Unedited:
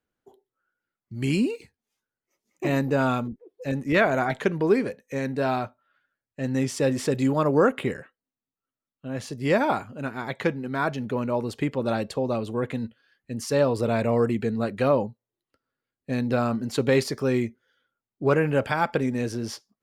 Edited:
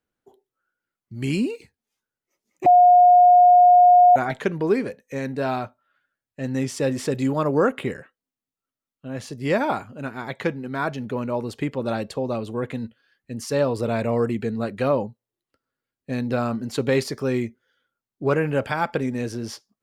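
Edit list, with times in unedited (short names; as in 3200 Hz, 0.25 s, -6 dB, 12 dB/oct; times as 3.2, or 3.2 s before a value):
2.66–4.16 bleep 716 Hz -9 dBFS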